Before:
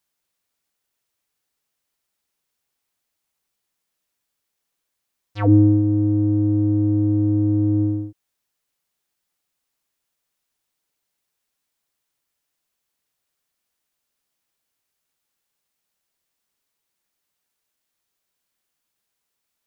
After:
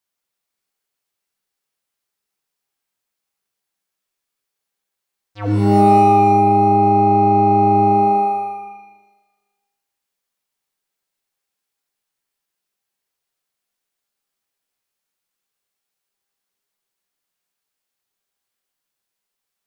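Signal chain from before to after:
bass and treble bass −4 dB, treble −1 dB
reverb with rising layers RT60 1.2 s, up +12 semitones, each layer −2 dB, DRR 2 dB
level −4 dB

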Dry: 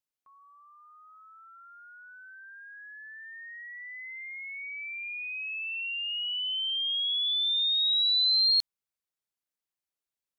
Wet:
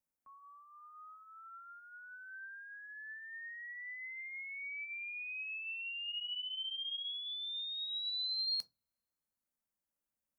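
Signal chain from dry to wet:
parametric band 3,700 Hz −14.5 dB 0.98 octaves
0:06.05–0:07.08: flutter between parallel walls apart 4.9 metres, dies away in 0.26 s
on a send at −8.5 dB: convolution reverb RT60 0.20 s, pre-delay 3 ms

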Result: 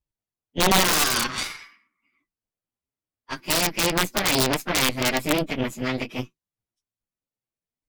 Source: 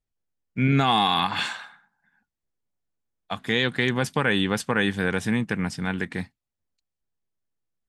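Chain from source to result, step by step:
phase-vocoder pitch shift without resampling +5.5 semitones
low-shelf EQ 69 Hz +2.5 dB
harmonic generator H 3 −23 dB, 4 −7 dB, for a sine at −12 dBFS
wrap-around overflow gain 12.5 dB
wow of a warped record 33 1/3 rpm, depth 100 cents
level +2.5 dB

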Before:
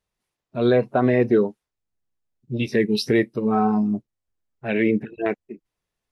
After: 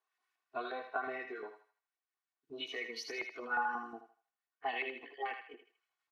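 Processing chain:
pitch glide at a constant tempo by +3.5 semitones starting unshifted
high-pass filter 170 Hz 12 dB per octave
high-shelf EQ 2,900 Hz +12 dB
comb filter 2.7 ms, depth 96%
downward compressor 6 to 1, threshold −26 dBFS, peak gain reduction 14.5 dB
auto-filter band-pass saw up 5.6 Hz 900–1,900 Hz
feedback echo with a high-pass in the loop 79 ms, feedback 42%, high-pass 850 Hz, level −5.5 dB

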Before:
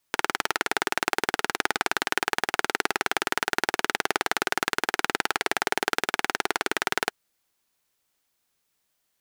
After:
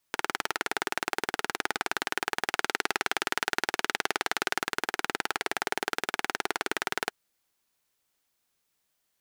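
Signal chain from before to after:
brickwall limiter −5.5 dBFS, peak gain reduction 4 dB
0:02.48–0:04.61: parametric band 3,800 Hz +3 dB 2.7 octaves
level −2 dB

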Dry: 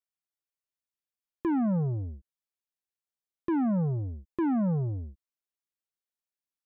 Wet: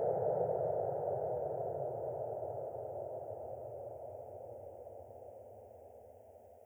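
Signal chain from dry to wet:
high-pass filter sweep 110 Hz → 820 Hz, 0:02.46–0:05.30
phaser with its sweep stopped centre 1,100 Hz, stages 6
extreme stretch with random phases 24×, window 1.00 s, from 0:05.06
level +16 dB

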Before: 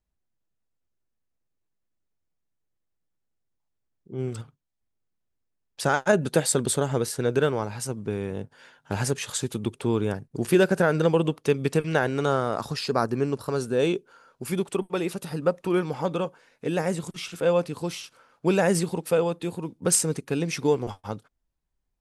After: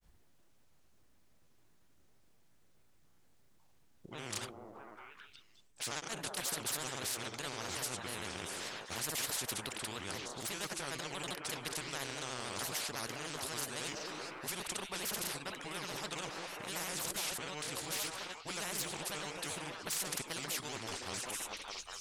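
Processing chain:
notch filter 480 Hz, Q 16
echo through a band-pass that steps 203 ms, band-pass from 430 Hz, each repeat 0.7 octaves, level −8.5 dB
reversed playback
downward compressor 6 to 1, threshold −31 dBFS, peak gain reduction 16 dB
reversed playback
granular cloud, grains 26 per second, spray 38 ms, pitch spread up and down by 3 semitones
every bin compressed towards the loudest bin 4 to 1

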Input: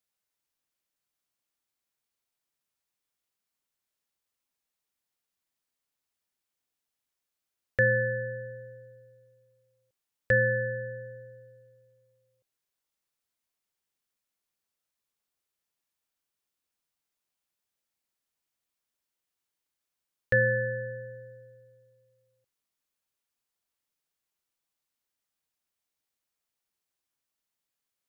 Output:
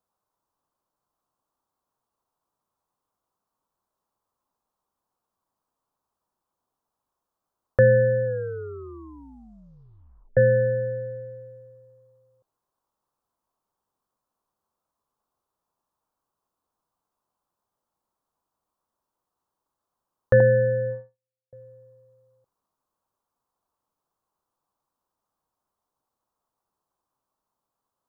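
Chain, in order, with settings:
0:08.25: tape stop 2.12 s
0:20.40–0:21.53: noise gate −37 dBFS, range −56 dB
high shelf with overshoot 1,500 Hz −12 dB, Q 3
level +8.5 dB

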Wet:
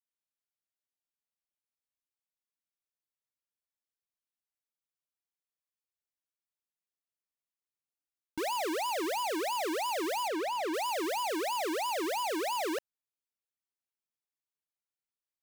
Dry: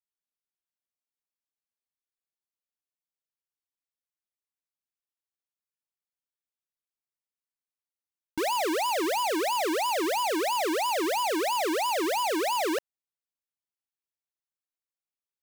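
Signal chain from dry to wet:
0:10.28–0:10.74: high-shelf EQ 5,400 Hz −10.5 dB
level −5.5 dB

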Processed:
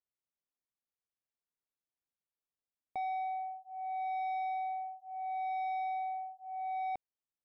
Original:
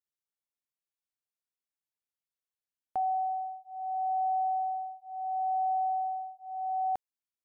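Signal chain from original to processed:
low-pass filter 1,000 Hz 6 dB per octave
soft clipping −33 dBFS, distortion −15 dB

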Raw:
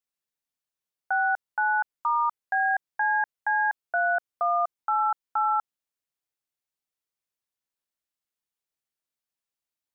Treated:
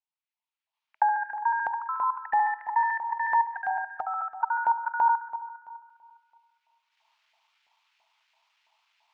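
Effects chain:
reversed piece by piece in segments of 79 ms
camcorder AGC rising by 14 dB per second
parametric band 1,600 Hz −9 dB 1 octave
in parallel at −1 dB: output level in coarse steps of 16 dB
on the sum: Chebyshev high-pass with heavy ripple 580 Hz, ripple 9 dB
high-frequency loss of the air 240 metres
on a send: echo with a time of its own for lows and highs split 1,400 Hz, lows 221 ms, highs 132 ms, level −12 dB
on the sum: wrong playback speed 44.1 kHz file played as 48 kHz
auto-filter high-pass saw up 3 Hz 760–1,700 Hz

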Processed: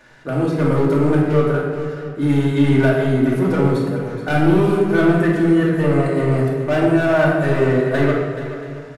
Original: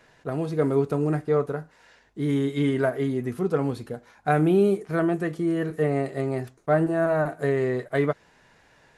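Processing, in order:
parametric band 1,500 Hz +5.5 dB 0.3 octaves
in parallel at +3 dB: brickwall limiter −16 dBFS, peak gain reduction 9 dB
on the sum: hard clipping −12.5 dBFS, distortion −14 dB
multi-tap delay 427/678 ms −12/−18.5 dB
rectangular room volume 1,100 cubic metres, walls mixed, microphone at 2.5 metres
level −4 dB

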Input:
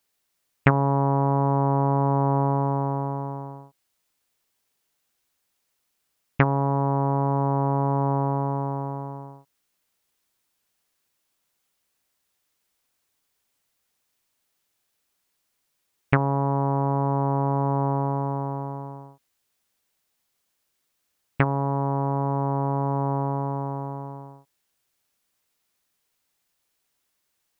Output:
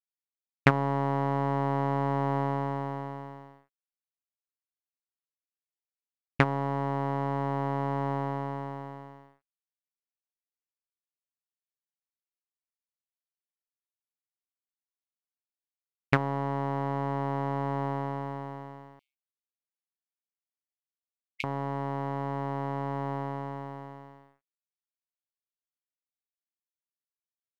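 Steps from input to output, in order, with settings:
dead-zone distortion −47.5 dBFS
power curve on the samples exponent 1.4
0:18.99–0:21.44: linear-phase brick-wall high-pass 2,100 Hz

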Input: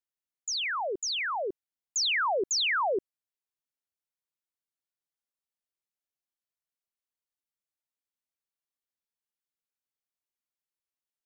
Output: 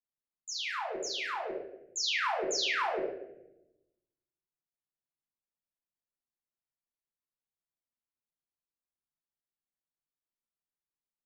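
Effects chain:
adaptive Wiener filter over 15 samples
convolution reverb RT60 0.90 s, pre-delay 5 ms, DRR −3 dB
level −8.5 dB

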